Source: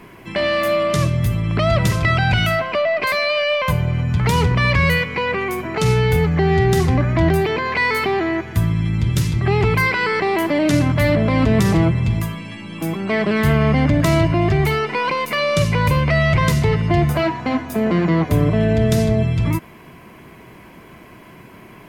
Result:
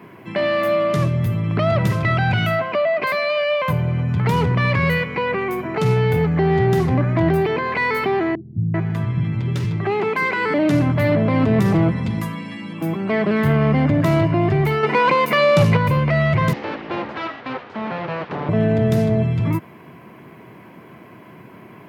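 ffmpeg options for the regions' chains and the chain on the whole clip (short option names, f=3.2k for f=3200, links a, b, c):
-filter_complex "[0:a]asettb=1/sr,asplit=3[a][b][c];[a]atrim=end=8.354[d];[b]atrim=start=8.35:end=10.54,asetpts=PTS-STARTPTS,afade=t=in:d=0.004:c=qsin,afade=t=out:st=2.186:d=0.004:c=qsin,highpass=96,adynamicsmooth=sensitivity=3.5:basefreq=6.2k,acrossover=split=250[e][f];[f]adelay=390[g];[e][g]amix=inputs=2:normalize=0,atrim=end_sample=96579[h];[c]atrim=start=10.536[i];[d][h]acrossfade=d=0.004:c1=hsin:c2=qsin[j];[j][i]acrossfade=d=0.004:c1=qsin:c2=hsin,asettb=1/sr,asplit=3[k][l][m];[k]atrim=end=11.884[n];[l]atrim=start=11.88:end=12.73,asetpts=PTS-STARTPTS,afade=t=in:d=0.004:c=qsin,afade=t=out:st=0.846:d=0.004:c=qsin,lowpass=12k,equalizer=f=7.2k:t=o:w=2.7:g=5,aecho=1:1:4:0.56,atrim=end_sample=37485[o];[m]atrim=start=12.726[p];[n][o]acrossfade=d=0.004:c1=hsin:c2=qsin[q];[q][p]acrossfade=d=0.004:c1=qsin:c2=hsin,asettb=1/sr,asplit=3[r][s][t];[r]atrim=end=14.834[u];[s]atrim=start=14.83:end=15.77,asetpts=PTS-STARTPTS,afade=t=in:d=0.004:c=qsin,afade=t=out:st=0.936:d=0.004:c=qsin,highpass=47,acontrast=65[v];[t]atrim=start=15.766[w];[u][v]acrossfade=d=0.004:c1=hsin:c2=qsin[x];[x][w]acrossfade=d=0.004:c1=qsin:c2=hsin,asettb=1/sr,asplit=3[y][z][aa];[y]atrim=end=16.534[ab];[z]atrim=start=16.53:end=18.49,asetpts=PTS-STARTPTS,afade=t=in:d=0.004:c=qsin,afade=t=out:st=1.956:d=0.004:c=qsin,bass=f=250:g=-11,treble=f=4k:g=-6,aeval=exprs='abs(val(0))':c=same,lowpass=f=5.1k:w=0.5412,lowpass=f=5.1k:w=1.3066[ac];[aa]atrim=start=18.486[ad];[ab][ac]acrossfade=d=0.004:c1=hsin:c2=qsin[ae];[ae][ad]acrossfade=d=0.004:c1=qsin:c2=hsin,equalizer=f=7.6k:w=0.42:g=-11.5,acontrast=45,highpass=f=100:w=0.5412,highpass=f=100:w=1.3066,volume=-5dB"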